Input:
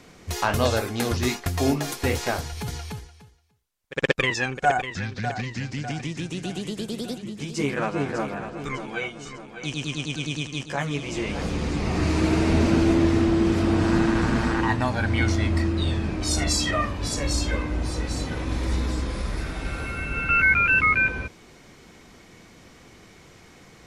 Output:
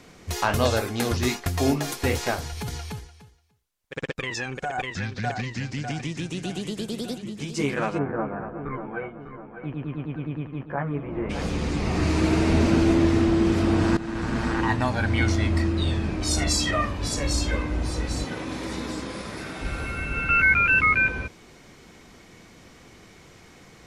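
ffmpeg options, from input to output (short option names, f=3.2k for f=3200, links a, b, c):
-filter_complex "[0:a]asettb=1/sr,asplit=3[a][b][c];[a]atrim=end=2.344[d];[b]atrim=start=2.34:end=4.78,asetpts=PTS-STARTPTS,afade=t=in:d=0.004:c=qsin,afade=t=out:st=2.436:d=0.004:c=qsin,acompressor=threshold=-26dB:ratio=6:attack=3.2:release=140:knee=1:detection=peak[e];[c]atrim=start=4.776[f];[d][e]acrossfade=d=0.004:c1=hsin:c2=qsin[g];[g][f]acrossfade=d=0.004:c1=qsin:c2=hsin,asplit=3[h][i][j];[h]afade=t=out:st=7.97:d=0.02[k];[i]lowpass=f=1.6k:w=0.5412,lowpass=f=1.6k:w=1.3066,afade=t=in:st=7.97:d=0.02,afade=t=out:st=11.29:d=0.02[l];[j]afade=t=in:st=11.29:d=0.02[m];[k][l][m]amix=inputs=3:normalize=0,asettb=1/sr,asplit=3[n][o][p];[n]atrim=end=18.244[q];[o]atrim=start=18.24:end=19.61,asetpts=PTS-STARTPTS,afade=t=in:d=0.004:c=qsin,afade=t=out:st=1.366:d=0.004:c=qsin,highpass=160[r];[p]atrim=start=19.606[s];[q][r]acrossfade=d=0.004:c1=hsin:c2=qsin[t];[t][s]acrossfade=d=0.004:c1=qsin:c2=hsin,asplit=2[u][v];[u]atrim=end=13.97,asetpts=PTS-STARTPTS,afade=t=out:st=13.966:d=0.004:c=hsin:silence=0.158489[w];[v]atrim=start=13.97,asetpts=PTS-STARTPTS,afade=t=in:d=0.95:c=qsin:silence=0.158489[x];[w][x]concat=n=2:v=0:a=1"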